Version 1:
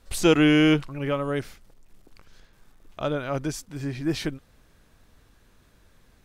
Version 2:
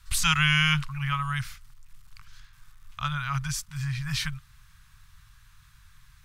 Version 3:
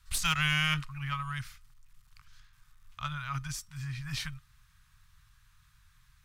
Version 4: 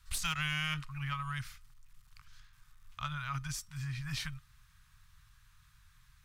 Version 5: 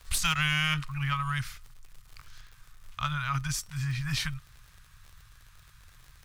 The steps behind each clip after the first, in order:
Chebyshev band-stop 140–1100 Hz, order 3; gain +4.5 dB
resonator 620 Hz, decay 0.23 s, harmonics all, mix 50%; added harmonics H 2 -17 dB, 4 -19 dB, 5 -34 dB, 7 -28 dB, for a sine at -15 dBFS
compressor 2:1, threshold -35 dBFS, peak gain reduction 7 dB
crackle 60/s -48 dBFS; gain +7.5 dB

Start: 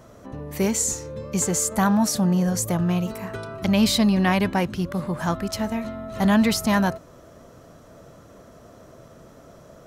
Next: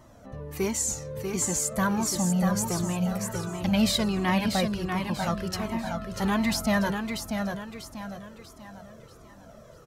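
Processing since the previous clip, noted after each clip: on a send: feedback echo 0.641 s, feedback 40%, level -5.5 dB; on the sum: cascading flanger falling 1.4 Hz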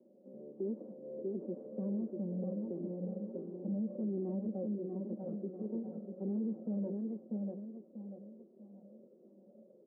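minimum comb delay 5.3 ms; elliptic band-pass 210–540 Hz, stop band 80 dB; limiter -26 dBFS, peak gain reduction 10 dB; gain -4 dB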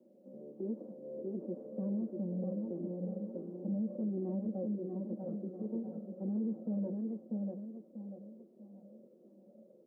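notch 400 Hz, Q 12; gain +1 dB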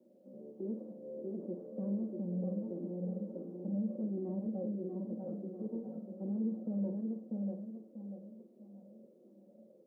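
flutter echo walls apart 8.6 m, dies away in 0.36 s; gain -1.5 dB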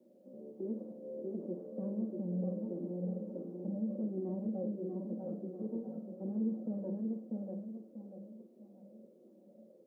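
notches 50/100/150/200 Hz; gain +1 dB

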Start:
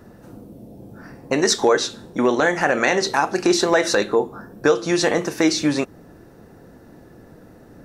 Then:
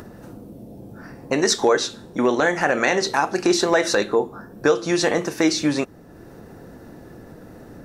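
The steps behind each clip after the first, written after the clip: upward compressor, threshold -33 dBFS; gain -1 dB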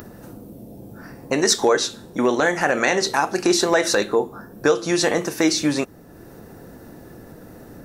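high shelf 9700 Hz +11.5 dB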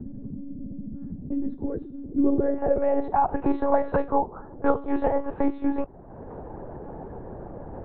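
low-pass sweep 200 Hz -> 870 Hz, 1.68–3.27; monotone LPC vocoder at 8 kHz 280 Hz; three-band squash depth 40%; gain -5 dB

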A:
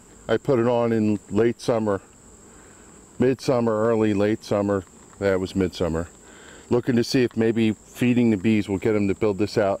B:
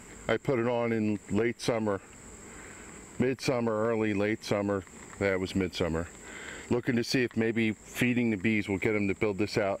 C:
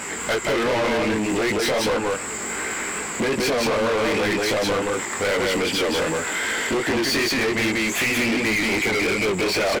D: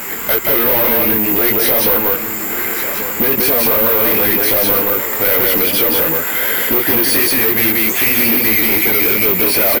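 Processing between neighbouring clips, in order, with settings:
compressor 4:1, threshold -26 dBFS, peak gain reduction 10 dB; bell 2100 Hz +12.5 dB 0.49 oct
echo 0.178 s -4 dB; chorus 2.6 Hz, delay 18 ms, depth 4.5 ms; overdrive pedal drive 32 dB, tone 7800 Hz, clips at -14.5 dBFS
careless resampling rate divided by 3×, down filtered, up zero stuff; echo 1.142 s -10.5 dB; gain +3.5 dB

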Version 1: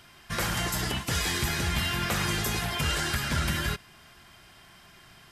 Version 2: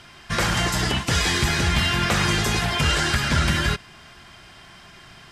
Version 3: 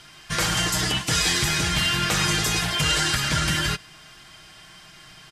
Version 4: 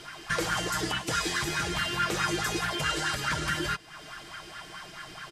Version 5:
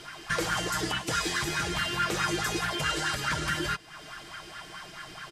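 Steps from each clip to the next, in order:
LPF 7800 Hz 12 dB/oct; gain +7.5 dB
high shelf 3500 Hz +9 dB; comb 6.4 ms, depth 45%; gain -4.5 dB
compressor 2:1, threshold -39 dBFS, peak gain reduction 11.5 dB; LFO bell 4.7 Hz 330–1600 Hz +15 dB
hard clip -19 dBFS, distortion -32 dB

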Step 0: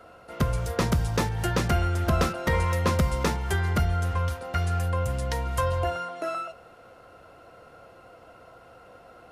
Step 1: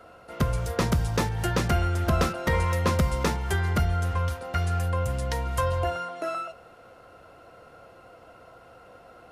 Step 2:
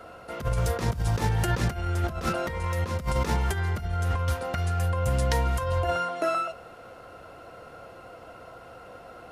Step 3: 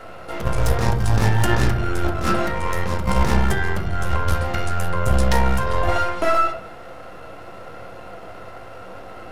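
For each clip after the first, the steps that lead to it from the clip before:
nothing audible
negative-ratio compressor -27 dBFS, ratio -0.5; gain +2 dB
half-wave gain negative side -12 dB; reverb RT60 0.65 s, pre-delay 9 ms, DRR 1.5 dB; gain +8 dB

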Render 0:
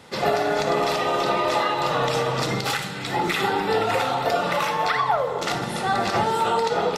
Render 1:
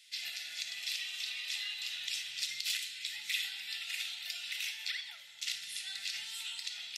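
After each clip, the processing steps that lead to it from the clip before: inverse Chebyshev high-pass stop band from 1200 Hz, stop band 40 dB; gain -5 dB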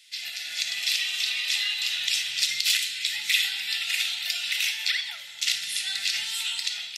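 AGC gain up to 7 dB; gain +5 dB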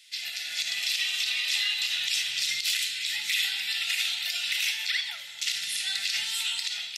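limiter -16 dBFS, peak gain reduction 8.5 dB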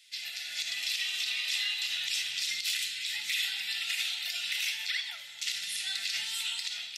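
flange 1.2 Hz, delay 3.6 ms, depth 2.2 ms, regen -67%

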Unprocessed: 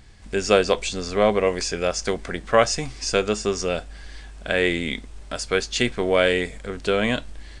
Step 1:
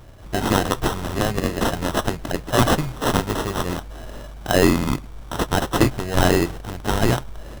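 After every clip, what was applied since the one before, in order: graphic EQ 125/250/500/1000/2000/4000/8000 Hz +10/-9/-10/-8/+12/-4/+11 dB; sample-rate reducer 2300 Hz, jitter 0%; gain +2 dB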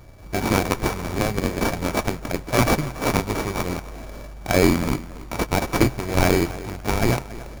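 thinning echo 0.281 s, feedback 25%, high-pass 160 Hz, level -16 dB; running maximum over 9 samples; gain -1 dB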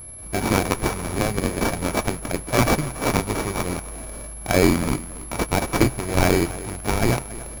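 whine 11000 Hz -37 dBFS

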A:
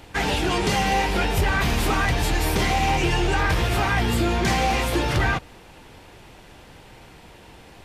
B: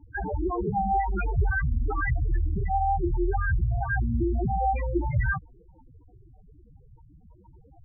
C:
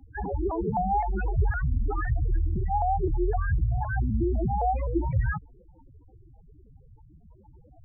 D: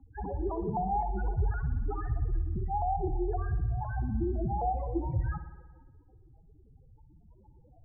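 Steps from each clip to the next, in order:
loudest bins only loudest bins 4
LPF 1200 Hz 12 dB/oct; shaped vibrato saw up 3.9 Hz, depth 160 cents
LPF 1300 Hz 24 dB/oct; spring tank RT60 1.2 s, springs 59 ms, chirp 50 ms, DRR 10 dB; gain -5 dB

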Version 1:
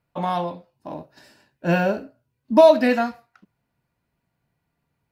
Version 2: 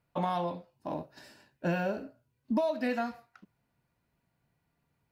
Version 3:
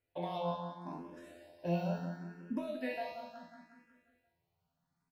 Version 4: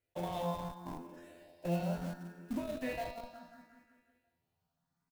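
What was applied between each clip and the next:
compressor 8:1, threshold -25 dBFS, peak gain reduction 16.5 dB; gain -2 dB
resonator 86 Hz, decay 0.62 s, harmonics all, mix 90%; on a send: feedback echo 0.18 s, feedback 55%, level -8 dB; on the sum: endless phaser +0.72 Hz; gain +7 dB
block floating point 5-bit; in parallel at -5 dB: Schmitt trigger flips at -38.5 dBFS; on the sum: feedback echo 0.252 s, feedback 50%, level -22.5 dB; gain -1.5 dB

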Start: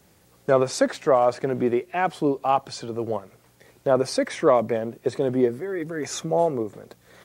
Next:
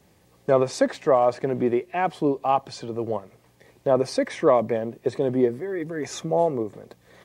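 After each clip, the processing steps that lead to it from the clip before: high shelf 5000 Hz -6.5 dB; notch 1400 Hz, Q 6.2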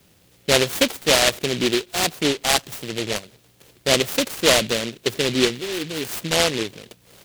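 high shelf 6600 Hz +11 dB; noise-modulated delay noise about 2900 Hz, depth 0.25 ms; gain +1.5 dB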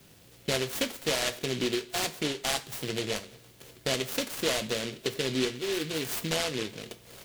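compressor 3:1, threshold -31 dBFS, peak gain reduction 14.5 dB; on a send at -8 dB: reverb, pre-delay 3 ms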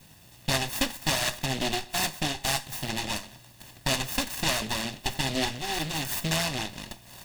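minimum comb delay 1.1 ms; gain +4 dB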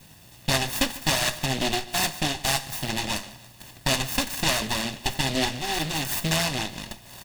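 feedback echo 0.146 s, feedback 43%, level -19.5 dB; gain +3 dB

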